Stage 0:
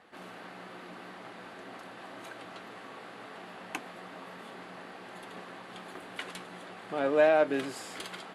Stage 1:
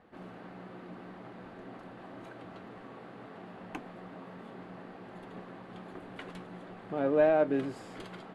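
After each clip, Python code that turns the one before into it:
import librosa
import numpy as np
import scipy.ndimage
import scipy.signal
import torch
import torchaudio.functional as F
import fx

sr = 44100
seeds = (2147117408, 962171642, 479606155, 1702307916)

y = fx.tilt_eq(x, sr, slope=-3.5)
y = F.gain(torch.from_numpy(y), -4.0).numpy()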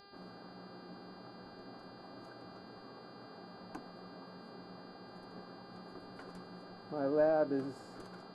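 y = fx.dmg_buzz(x, sr, base_hz=400.0, harmonics=12, level_db=-51.0, tilt_db=0, odd_only=False)
y = fx.band_shelf(y, sr, hz=2700.0, db=-13.0, octaves=1.2)
y = F.gain(torch.from_numpy(y), -5.0).numpy()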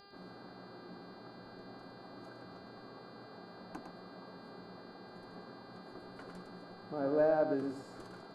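y = x + 10.0 ** (-7.5 / 20.0) * np.pad(x, (int(107 * sr / 1000.0), 0))[:len(x)]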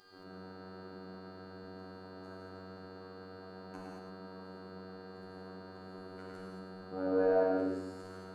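y = fx.robotise(x, sr, hz=93.8)
y = fx.rev_gated(y, sr, seeds[0], gate_ms=250, shape='flat', drr_db=-4.5)
y = F.gain(torch.from_numpy(y), -2.5).numpy()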